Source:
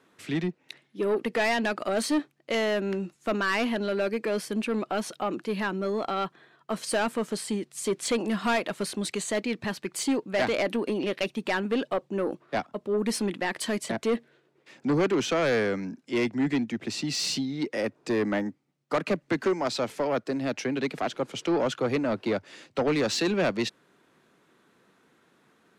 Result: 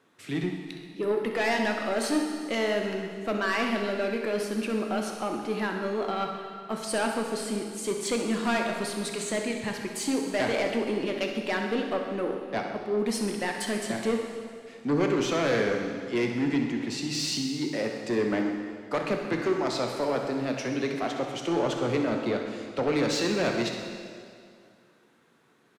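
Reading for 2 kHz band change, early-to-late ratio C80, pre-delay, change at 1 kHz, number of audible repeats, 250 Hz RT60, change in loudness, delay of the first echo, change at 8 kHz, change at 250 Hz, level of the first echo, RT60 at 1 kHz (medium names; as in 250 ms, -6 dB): -0.5 dB, 5.0 dB, 5 ms, 0.0 dB, 1, 2.2 s, -0.5 dB, 65 ms, -0.5 dB, 0.0 dB, -11.0 dB, 2.3 s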